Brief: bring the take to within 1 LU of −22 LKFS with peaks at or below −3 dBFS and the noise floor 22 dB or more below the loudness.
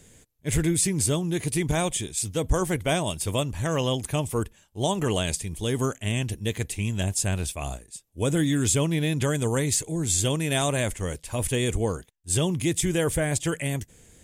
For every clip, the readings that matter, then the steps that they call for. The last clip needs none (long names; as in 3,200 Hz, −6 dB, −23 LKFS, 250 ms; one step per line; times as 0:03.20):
integrated loudness −26.0 LKFS; sample peak −12.0 dBFS; target loudness −22.0 LKFS
→ level +4 dB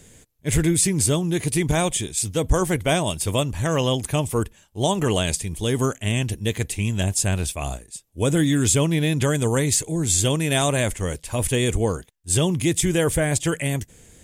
integrated loudness −22.0 LKFS; sample peak −8.0 dBFS; background noise floor −54 dBFS